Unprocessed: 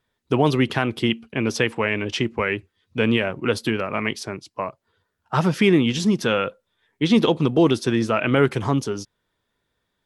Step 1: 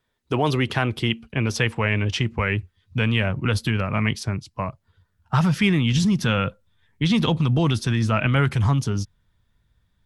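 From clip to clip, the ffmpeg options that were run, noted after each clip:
-filter_complex "[0:a]asubboost=boost=11:cutoff=120,acrossover=split=650|3100[s0][s1][s2];[s0]alimiter=limit=0.188:level=0:latency=1[s3];[s3][s1][s2]amix=inputs=3:normalize=0"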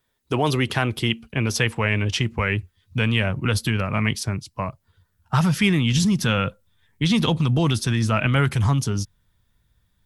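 -af "highshelf=f=7500:g=11.5"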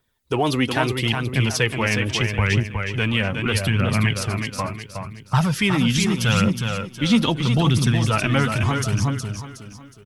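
-filter_complex "[0:a]asplit=2[s0][s1];[s1]aecho=0:1:366|732|1098|1464|1830:0.531|0.202|0.0767|0.0291|0.0111[s2];[s0][s2]amix=inputs=2:normalize=0,aphaser=in_gain=1:out_gain=1:delay=4.2:decay=0.41:speed=0.77:type=triangular"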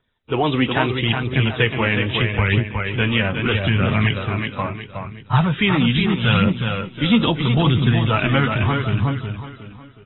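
-af "volume=1.19" -ar 22050 -c:a aac -b:a 16k

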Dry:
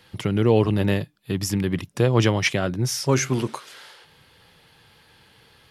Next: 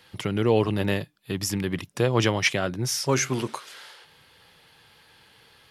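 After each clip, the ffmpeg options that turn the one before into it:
-af "lowshelf=f=360:g=-6"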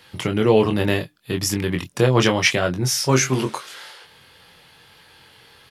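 -filter_complex "[0:a]asplit=2[s0][s1];[s1]adelay=23,volume=0.531[s2];[s0][s2]amix=inputs=2:normalize=0,volume=1.68"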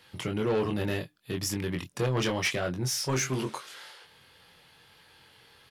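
-af "asoftclip=type=tanh:threshold=0.2,volume=0.422"

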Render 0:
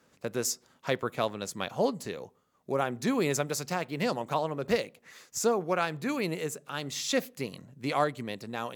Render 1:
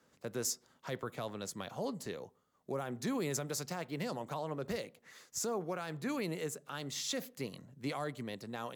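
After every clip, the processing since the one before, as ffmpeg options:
-filter_complex "[0:a]equalizer=f=2500:w=6.1:g=-4,acrossover=split=150|6600[s0][s1][s2];[s1]alimiter=level_in=1.06:limit=0.0631:level=0:latency=1:release=28,volume=0.944[s3];[s0][s3][s2]amix=inputs=3:normalize=0,volume=0.596"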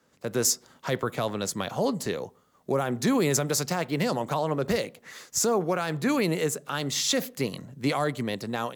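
-af "dynaudnorm=f=160:g=3:m=2.82,volume=1.41"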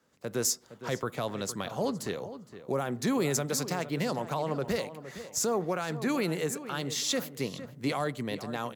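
-filter_complex "[0:a]asplit=2[s0][s1];[s1]adelay=463,lowpass=f=2500:p=1,volume=0.237,asplit=2[s2][s3];[s3]adelay=463,lowpass=f=2500:p=1,volume=0.25,asplit=2[s4][s5];[s5]adelay=463,lowpass=f=2500:p=1,volume=0.25[s6];[s0][s2][s4][s6]amix=inputs=4:normalize=0,volume=0.596"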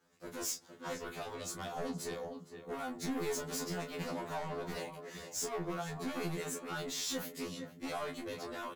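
-filter_complex "[0:a]asoftclip=type=tanh:threshold=0.0237,asplit=2[s0][s1];[s1]adelay=26,volume=0.447[s2];[s0][s2]amix=inputs=2:normalize=0,afftfilt=real='re*2*eq(mod(b,4),0)':imag='im*2*eq(mod(b,4),0)':win_size=2048:overlap=0.75"

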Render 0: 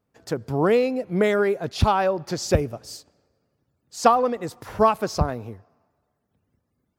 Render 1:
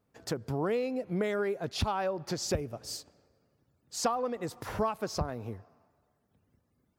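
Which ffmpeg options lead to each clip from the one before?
-af "acompressor=threshold=0.0224:ratio=2.5"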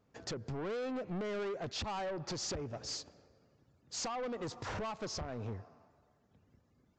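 -af "alimiter=level_in=1.19:limit=0.0631:level=0:latency=1:release=244,volume=0.841,aresample=16000,asoftclip=type=tanh:threshold=0.0119,aresample=44100,volume=1.41"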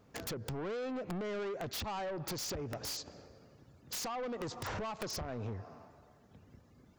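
-af "acompressor=threshold=0.00501:ratio=16,aeval=exprs='(mod(133*val(0)+1,2)-1)/133':c=same,volume=2.82"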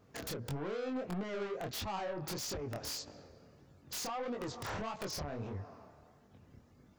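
-af "flanger=delay=20:depth=7.7:speed=1.6,volume=1.33"

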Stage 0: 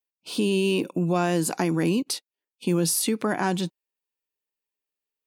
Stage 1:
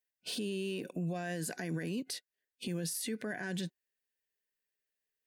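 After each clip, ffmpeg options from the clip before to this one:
-filter_complex "[0:a]superequalizer=6b=0.562:9b=0.316:10b=0.355:11b=2.24,asplit=2[s0][s1];[s1]acompressor=threshold=0.0224:ratio=6,volume=1.12[s2];[s0][s2]amix=inputs=2:normalize=0,alimiter=limit=0.0891:level=0:latency=1:release=98,volume=0.422"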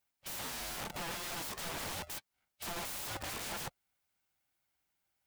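-af "aeval=exprs='(mod(133*val(0)+1,2)-1)/133':c=same,equalizer=f=125:t=o:w=1:g=-5,equalizer=f=250:t=o:w=1:g=4,equalizer=f=500:t=o:w=1:g=6,aeval=exprs='val(0)*sgn(sin(2*PI*340*n/s))':c=same,volume=1.88"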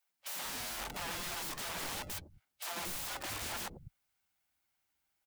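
-filter_complex "[0:a]acrossover=split=150|480[s0][s1][s2];[s1]adelay=90[s3];[s0]adelay=190[s4];[s4][s3][s2]amix=inputs=3:normalize=0,volume=1.12"

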